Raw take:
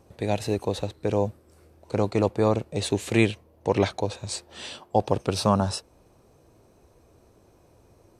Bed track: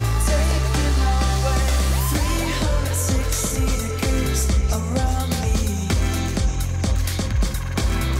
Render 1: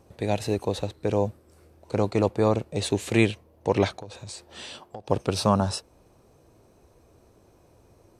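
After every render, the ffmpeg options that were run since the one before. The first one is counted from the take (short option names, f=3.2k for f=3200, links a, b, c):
-filter_complex "[0:a]asettb=1/sr,asplit=3[a][b][c];[a]atrim=end=3.964[d];[b]atrim=start=3.96:end=5.1,asetpts=PTS-STARTPTS,afade=t=in:d=0.004:c=qsin,afade=t=out:st=1.136:d=0.004:c=qsin,acompressor=threshold=-35dB:ratio=8:attack=3.2:release=140:knee=1:detection=peak[e];[c]atrim=start=5.096[f];[d][e]acrossfade=d=0.004:c1=hsin:c2=qsin[g];[g][f]acrossfade=d=0.004:c1=qsin:c2=hsin"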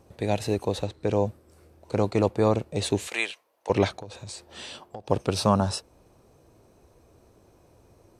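-filter_complex "[0:a]asettb=1/sr,asplit=3[a][b][c];[a]atrim=end=0.844[d];[b]atrim=start=0.84:end=1.27,asetpts=PTS-STARTPTS,afade=t=in:d=0.004:c=qsin,afade=t=out:st=0.426:d=0.004:c=qsin,lowpass=9.2k[e];[c]atrim=start=1.266[f];[d][e]acrossfade=d=0.004:c1=hsin:c2=qsin[g];[g][f]acrossfade=d=0.004:c1=qsin:c2=hsin,asettb=1/sr,asplit=3[h][i][j];[h]atrim=end=3.074[k];[i]atrim=start=3.07:end=3.7,asetpts=PTS-STARTPTS,afade=t=in:d=0.004:c=qsin,afade=t=out:st=0.626:d=0.004:c=qsin,highpass=950[l];[j]atrim=start=3.696[m];[k][l]acrossfade=d=0.004:c1=hsin:c2=qsin[n];[n][m]acrossfade=d=0.004:c1=qsin:c2=hsin"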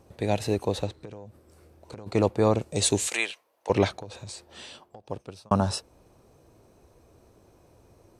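-filter_complex "[0:a]asplit=3[a][b][c];[a]afade=t=out:st=1.03:d=0.02[d];[b]acompressor=threshold=-37dB:ratio=16:attack=3.2:release=140:knee=1:detection=peak,afade=t=in:st=1.03:d=0.02,afade=t=out:st=2.06:d=0.02[e];[c]afade=t=in:st=2.06:d=0.02[f];[d][e][f]amix=inputs=3:normalize=0,asettb=1/sr,asplit=3[g][h][i];[g]atrim=end=2.614[j];[h]atrim=start=2.61:end=3.17,asetpts=PTS-STARTPTS,afade=t=in:d=0.004:c=qsin,afade=t=out:st=0.556:d=0.004:c=qsin,equalizer=f=7.7k:t=o:w=1.4:g=11.5[k];[i]atrim=start=3.166[l];[j][k]acrossfade=d=0.004:c1=hsin:c2=qsin[m];[m][l]acrossfade=d=0.004:c1=qsin:c2=hsin,asplit=2[n][o];[n]atrim=end=5.51,asetpts=PTS-STARTPTS,afade=t=out:st=4.18:d=1.33[p];[o]atrim=start=5.51,asetpts=PTS-STARTPTS,afade=t=in:d=0.004:c=hsin[q];[p][q]concat=n=2:v=0:a=1"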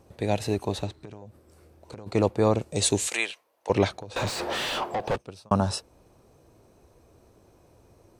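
-filter_complex "[0:a]asettb=1/sr,asplit=3[a][b][c];[a]atrim=end=0.494[d];[b]atrim=start=0.49:end=1.22,asetpts=PTS-STARTPTS,afade=t=in:d=0.004:c=qsin,afade=t=out:st=0.726:d=0.004:c=qsin,bandreject=f=500:w=5.4[e];[c]atrim=start=1.216[f];[d][e]acrossfade=d=0.004:c1=hsin:c2=qsin[g];[g][f]acrossfade=d=0.004:c1=qsin:c2=hsin,asettb=1/sr,asplit=3[h][i][j];[h]atrim=end=4.164[k];[i]atrim=start=4.16:end=5.16,asetpts=PTS-STARTPTS,afade=t=in:d=0.004:c=qsin,afade=t=out:st=0.996:d=0.004:c=qsin,asplit=2[l][m];[m]highpass=f=720:p=1,volume=40dB,asoftclip=type=tanh:threshold=-17dB[n];[l][n]amix=inputs=2:normalize=0,lowpass=f=1.7k:p=1,volume=-6dB[o];[j]atrim=start=5.156[p];[k][o]acrossfade=d=0.004:c1=hsin:c2=qsin[q];[q][p]acrossfade=d=0.004:c1=qsin:c2=hsin"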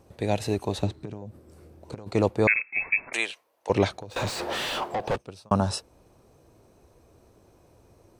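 -filter_complex "[0:a]asettb=1/sr,asplit=3[a][b][c];[a]atrim=end=0.834[d];[b]atrim=start=0.83:end=1.95,asetpts=PTS-STARTPTS,afade=t=in:d=0.004:c=qsin,afade=t=out:st=1.116:d=0.004:c=qsin,equalizer=f=180:t=o:w=2.9:g=7.5[e];[c]atrim=start=1.946[f];[d][e]acrossfade=d=0.004:c1=hsin:c2=qsin[g];[g][f]acrossfade=d=0.004:c1=qsin:c2=hsin,asettb=1/sr,asplit=3[h][i][j];[h]atrim=end=2.474[k];[i]atrim=start=2.47:end=3.13,asetpts=PTS-STARTPTS,afade=t=in:d=0.004:c=qsin,afade=t=out:st=0.656:d=0.004:c=qsin,lowpass=f=2.3k:t=q:w=0.5098,lowpass=f=2.3k:t=q:w=0.6013,lowpass=f=2.3k:t=q:w=0.9,lowpass=f=2.3k:t=q:w=2.563,afreqshift=-2700[l];[j]atrim=start=3.126[m];[k][l]acrossfade=d=0.004:c1=hsin:c2=qsin[n];[n][m]acrossfade=d=0.004:c1=qsin:c2=hsin,asettb=1/sr,asplit=3[o][p][q];[o]atrim=end=4.104[r];[p]atrim=start=4.1:end=4.93,asetpts=PTS-STARTPTS,afade=t=in:d=0.004:c=qsin,afade=t=out:st=0.826:d=0.004:c=qsin,aeval=exprs='sgn(val(0))*max(abs(val(0))-0.00251,0)':c=same[s];[q]atrim=start=4.926[t];[r][s]acrossfade=d=0.004:c1=hsin:c2=qsin[u];[u][t]acrossfade=d=0.004:c1=qsin:c2=hsin"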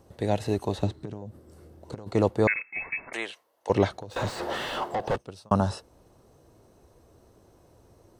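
-filter_complex "[0:a]bandreject=f=2.4k:w=7.8,acrossover=split=2600[a][b];[b]acompressor=threshold=-41dB:ratio=4:attack=1:release=60[c];[a][c]amix=inputs=2:normalize=0"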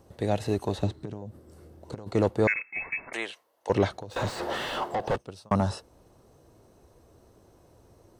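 -af "asoftclip=type=tanh:threshold=-10.5dB"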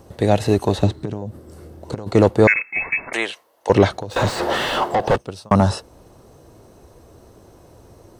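-af "volume=10.5dB,alimiter=limit=-2dB:level=0:latency=1"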